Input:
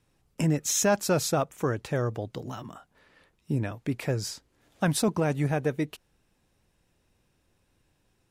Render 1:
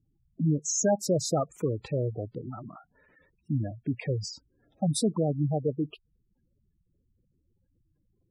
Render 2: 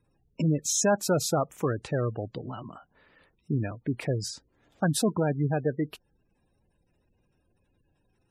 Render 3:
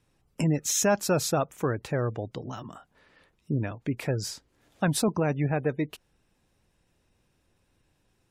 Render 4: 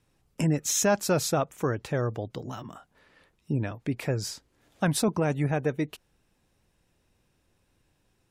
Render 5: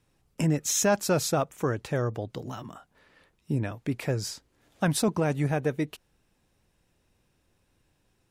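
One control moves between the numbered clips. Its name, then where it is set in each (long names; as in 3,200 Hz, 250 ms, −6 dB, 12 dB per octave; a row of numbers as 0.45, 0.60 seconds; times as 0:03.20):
gate on every frequency bin, under each frame's peak: −10, −20, −35, −45, −60 decibels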